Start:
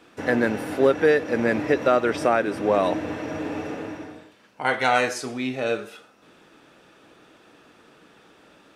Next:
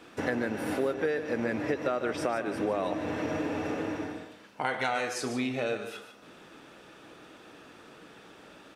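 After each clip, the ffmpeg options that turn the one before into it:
-filter_complex "[0:a]acompressor=threshold=-30dB:ratio=4,asplit=2[a][b];[b]aecho=0:1:148:0.299[c];[a][c]amix=inputs=2:normalize=0,volume=1.5dB"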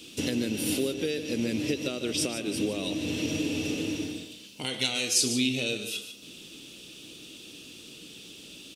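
-af "firequalizer=gain_entry='entry(290,0);entry(750,-17);entry(1700,-16);entry(2800,9);entry(8900,12)':delay=0.05:min_phase=1,volume=4dB"

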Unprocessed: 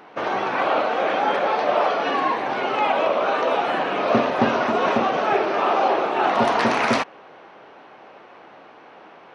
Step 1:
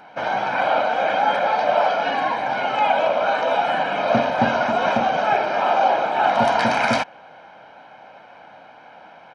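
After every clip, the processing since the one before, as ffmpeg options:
-af "aecho=1:1:1.3:0.71,volume=-1dB"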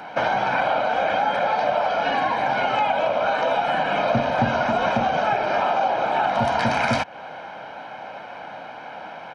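-filter_complex "[0:a]acrossover=split=130[a][b];[b]acompressor=threshold=-27dB:ratio=6[c];[a][c]amix=inputs=2:normalize=0,volume=8dB"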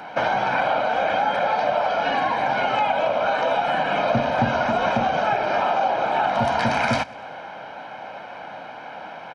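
-af "aecho=1:1:98|196|294|392:0.0794|0.0437|0.024|0.0132"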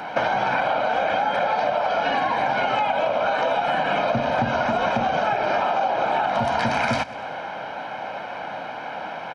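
-af "acompressor=threshold=-23dB:ratio=6,volume=4.5dB"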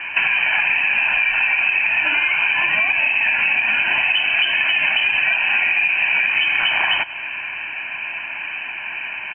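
-af "lowpass=f=2.7k:t=q:w=0.5098,lowpass=f=2.7k:t=q:w=0.6013,lowpass=f=2.7k:t=q:w=0.9,lowpass=f=2.7k:t=q:w=2.563,afreqshift=-3200,volume=4dB"

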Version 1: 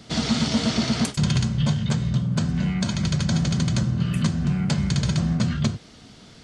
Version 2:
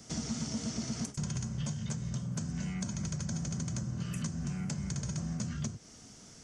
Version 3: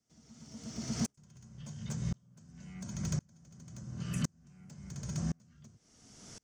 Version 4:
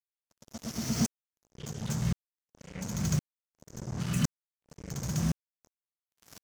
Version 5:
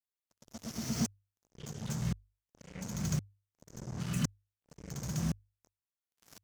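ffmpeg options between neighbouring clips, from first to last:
-filter_complex "[0:a]highshelf=f=4.9k:t=q:w=3:g=7,acrossover=split=370|1800|7500[a][b][c][d];[a]acompressor=threshold=-26dB:ratio=4[e];[b]acompressor=threshold=-43dB:ratio=4[f];[c]acompressor=threshold=-37dB:ratio=4[g];[d]acompressor=threshold=-47dB:ratio=4[h];[e][f][g][h]amix=inputs=4:normalize=0,volume=-8dB"
-filter_complex "[0:a]acrossover=split=780[a][b];[b]asoftclip=type=tanh:threshold=-34dB[c];[a][c]amix=inputs=2:normalize=0,aeval=exprs='val(0)*pow(10,-36*if(lt(mod(-0.94*n/s,1),2*abs(-0.94)/1000),1-mod(-0.94*n/s,1)/(2*abs(-0.94)/1000),(mod(-0.94*n/s,1)-2*abs(-0.94)/1000)/(1-2*abs(-0.94)/1000))/20)':c=same,volume=5dB"
-af "acrusher=bits=6:mix=0:aa=0.5,volume=5.5dB"
-af "bandreject=f=50:t=h:w=6,bandreject=f=100:t=h:w=6,volume=-4dB"

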